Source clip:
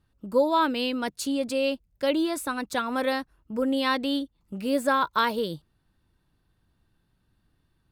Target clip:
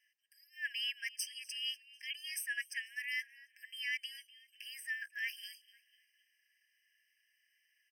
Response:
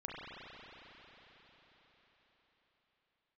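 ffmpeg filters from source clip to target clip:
-filter_complex "[0:a]afreqshift=170,areverse,acompressor=threshold=-35dB:ratio=8,areverse,equalizer=f=3.1k:t=o:w=2.1:g=2.5,asplit=4[a][b][c][d];[b]adelay=248,afreqshift=-100,volume=-21dB[e];[c]adelay=496,afreqshift=-200,volume=-27.9dB[f];[d]adelay=744,afreqshift=-300,volume=-34.9dB[g];[a][e][f][g]amix=inputs=4:normalize=0,afftfilt=real='re*eq(mod(floor(b*sr/1024/1600),2),1)':imag='im*eq(mod(floor(b*sr/1024/1600),2),1)':win_size=1024:overlap=0.75,volume=6dB"

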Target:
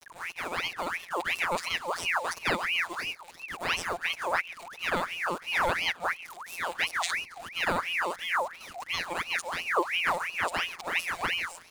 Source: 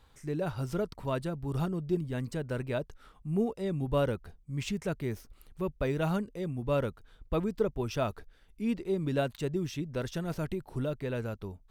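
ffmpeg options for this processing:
-filter_complex "[0:a]areverse,equalizer=f=1.1k:t=o:w=0.6:g=-7.5,asplit=2[a][b];[b]acompressor=threshold=-41dB:ratio=5,volume=2dB[c];[a][c]amix=inputs=2:normalize=0,afftfilt=real='hypot(re,im)*cos(PI*b)':imag='0':win_size=1024:overlap=0.75,acrusher=bits=8:mix=0:aa=0.000001,equalizer=f=250:t=o:w=0.33:g=-9,equalizer=f=1.6k:t=o:w=0.33:g=8,equalizer=f=3.15k:t=o:w=0.33:g=8,equalizer=f=8k:t=o:w=0.33:g=11,asplit=2[d][e];[e]aecho=0:1:138|276|414:0.1|0.042|0.0176[f];[d][f]amix=inputs=2:normalize=0,aeval=exprs='val(0)*sin(2*PI*1700*n/s+1700*0.6/2.9*sin(2*PI*2.9*n/s))':c=same,volume=6dB"

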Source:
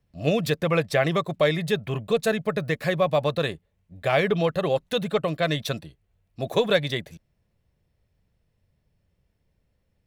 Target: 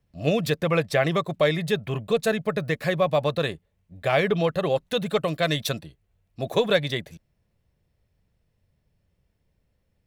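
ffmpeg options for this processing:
-filter_complex "[0:a]asettb=1/sr,asplit=3[a][b][c];[a]atrim=end=5.064[d];[b]atrim=start=5.06:end=5.72,asetpts=PTS-STARTPTS,afade=t=in:d=0.004:c=qsin,afade=t=out:st=0.656:d=0.004:c=qsin,highshelf=f=4.4k:g=7[e];[c]atrim=start=5.716[f];[d][e]acrossfade=d=0.004:c1=hsin:c2=qsin[g];[g][f]acrossfade=d=0.004:c1=qsin:c2=hsin"

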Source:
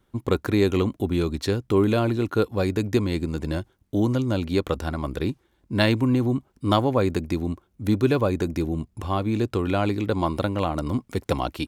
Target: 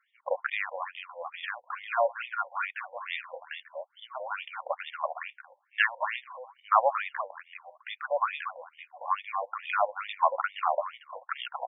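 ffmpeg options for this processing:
-af "aecho=1:1:230:0.422,afftfilt=real='re*between(b*sr/1024,680*pow(2600/680,0.5+0.5*sin(2*PI*2.3*pts/sr))/1.41,680*pow(2600/680,0.5+0.5*sin(2*PI*2.3*pts/sr))*1.41)':imag='im*between(b*sr/1024,680*pow(2600/680,0.5+0.5*sin(2*PI*2.3*pts/sr))/1.41,680*pow(2600/680,0.5+0.5*sin(2*PI*2.3*pts/sr))*1.41)':win_size=1024:overlap=0.75,volume=4.5dB"

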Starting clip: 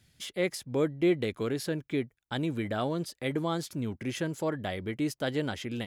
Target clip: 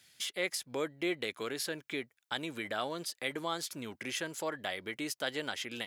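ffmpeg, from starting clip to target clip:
-filter_complex "[0:a]highpass=f=1.3k:p=1,asplit=2[a][b];[b]acompressor=threshold=-46dB:ratio=6,volume=1.5dB[c];[a][c]amix=inputs=2:normalize=0"

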